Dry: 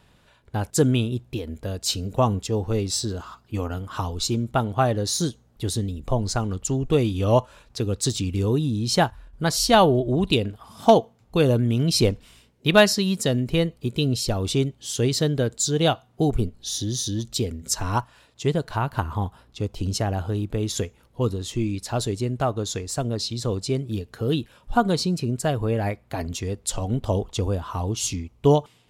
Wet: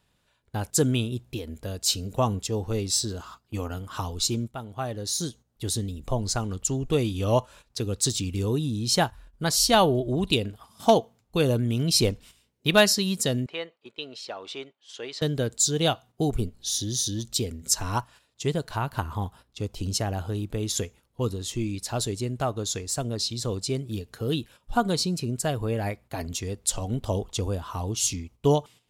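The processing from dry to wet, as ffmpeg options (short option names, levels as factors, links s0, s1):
-filter_complex "[0:a]asettb=1/sr,asplit=3[s0][s1][s2];[s0]atrim=end=13.464[s3];[s1]atrim=start=13.46:end=15.22,asetpts=PTS-STARTPTS,afade=t=in:d=0.004:c=qsin,afade=t=out:st=1.756:d=0.004:c=qsin,highpass=690,lowpass=2500[s4];[s2]atrim=start=15.216[s5];[s3][s4]acrossfade=d=0.004:c1=hsin:c2=qsin[s6];[s6][s5]acrossfade=d=0.004:c1=qsin:c2=hsin,asplit=2[s7][s8];[s7]atrim=end=4.48,asetpts=PTS-STARTPTS,afade=t=out:st=4.476:d=0.004:c=hsin:silence=0.237137[s9];[s8]atrim=start=4.48,asetpts=PTS-STARTPTS,afade=t=in:d=1.29:silence=0.237137[s10];[s9][s10]concat=n=2:v=0:a=1,agate=range=0.355:threshold=0.00708:ratio=16:detection=peak,highshelf=f=3700:g=7.5,volume=0.631"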